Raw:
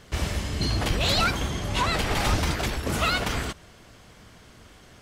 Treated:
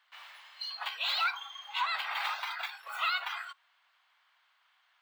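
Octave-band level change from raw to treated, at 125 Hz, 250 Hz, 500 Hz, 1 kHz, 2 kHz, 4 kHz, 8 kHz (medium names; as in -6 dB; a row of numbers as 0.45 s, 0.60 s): under -40 dB, under -40 dB, -23.0 dB, -6.0 dB, -5.5 dB, -6.5 dB, -21.5 dB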